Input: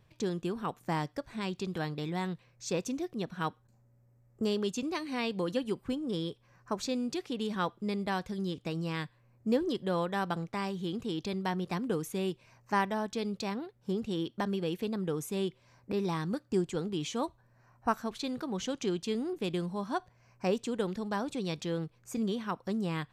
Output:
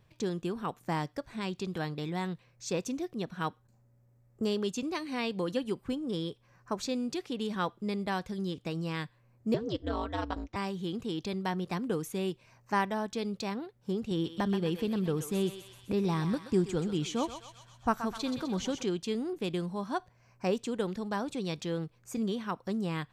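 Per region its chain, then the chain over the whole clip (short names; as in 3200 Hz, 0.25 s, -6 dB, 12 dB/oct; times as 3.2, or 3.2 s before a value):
9.54–10.56 steep low-pass 7000 Hz + comb 4.8 ms, depth 39% + ring modulator 110 Hz
14.11–18.83 low shelf 160 Hz +9 dB + thinning echo 0.127 s, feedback 65%, high-pass 940 Hz, level -7 dB
whole clip: dry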